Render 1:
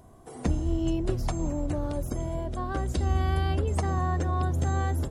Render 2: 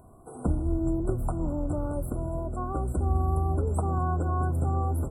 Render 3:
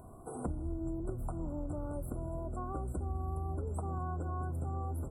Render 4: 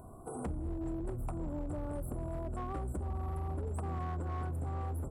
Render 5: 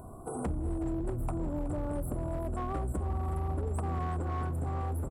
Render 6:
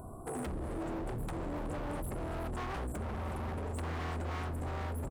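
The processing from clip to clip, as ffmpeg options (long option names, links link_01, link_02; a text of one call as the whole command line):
ffmpeg -i in.wav -af "afftfilt=real='re*(1-between(b*sr/4096,1500,7500))':imag='im*(1-between(b*sr/4096,1500,7500))':win_size=4096:overlap=0.75" out.wav
ffmpeg -i in.wav -af "acompressor=threshold=-39dB:ratio=3,volume=1dB" out.wav
ffmpeg -i in.wav -af "volume=33.5dB,asoftclip=hard,volume=-33.5dB,volume=1dB" out.wav
ffmpeg -i in.wav -af "aecho=1:1:372:0.2,volume=4.5dB" out.wav
ffmpeg -i in.wav -af "aeval=exprs='0.0237*(abs(mod(val(0)/0.0237+3,4)-2)-1)':channel_layout=same" out.wav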